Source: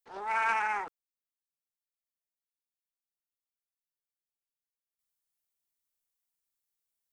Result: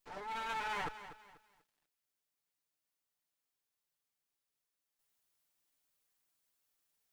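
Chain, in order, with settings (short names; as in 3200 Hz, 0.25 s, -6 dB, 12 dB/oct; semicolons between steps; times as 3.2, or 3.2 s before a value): minimum comb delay 6.8 ms; reverse; compressor 16:1, threshold -42 dBFS, peak gain reduction 17.5 dB; reverse; lo-fi delay 0.244 s, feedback 35%, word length 12-bit, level -12.5 dB; gain +6 dB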